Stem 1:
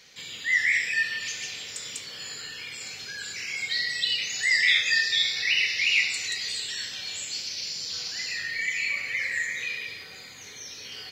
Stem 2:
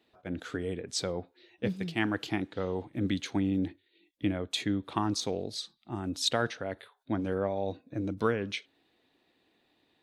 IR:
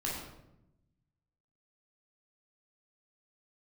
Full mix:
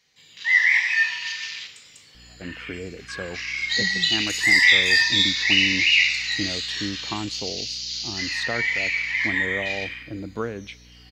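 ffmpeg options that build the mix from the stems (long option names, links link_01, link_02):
-filter_complex "[0:a]afwtdn=0.0141,volume=0dB,asplit=2[link_01][link_02];[link_02]volume=-3dB[link_03];[1:a]aeval=exprs='val(0)+0.00355*(sin(2*PI*60*n/s)+sin(2*PI*2*60*n/s)/2+sin(2*PI*3*60*n/s)/3+sin(2*PI*4*60*n/s)/4+sin(2*PI*5*60*n/s)/5)':channel_layout=same,highshelf=frequency=4200:gain=-10.5,adelay=2150,volume=-0.5dB[link_04];[2:a]atrim=start_sample=2205[link_05];[link_03][link_05]afir=irnorm=-1:irlink=0[link_06];[link_01][link_04][link_06]amix=inputs=3:normalize=0"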